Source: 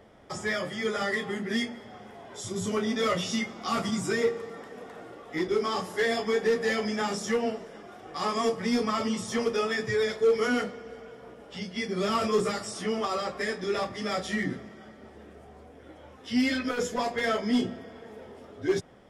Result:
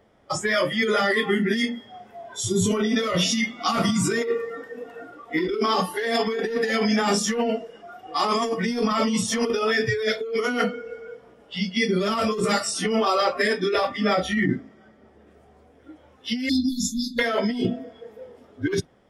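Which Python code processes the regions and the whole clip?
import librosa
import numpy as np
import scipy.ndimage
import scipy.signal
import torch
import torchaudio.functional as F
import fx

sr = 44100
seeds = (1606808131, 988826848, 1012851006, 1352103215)

y = fx.chain(x, sr, fx.high_shelf(hz=2400.0, db=-5.5),
    fx.notch(hz=4100.0, q=29.0), at=(13.97, 15.27))
y = fx.chain(y, sr, fx.brickwall_bandstop(low_hz=300.0, high_hz=3400.0),
    fx.overload_stage(gain_db=24.0), at=(16.49, 17.19))
y = fx.noise_reduce_blind(y, sr, reduce_db=16)
y = fx.over_compress(y, sr, threshold_db=-31.0, ratio=-1.0)
y = y * librosa.db_to_amplitude(8.5)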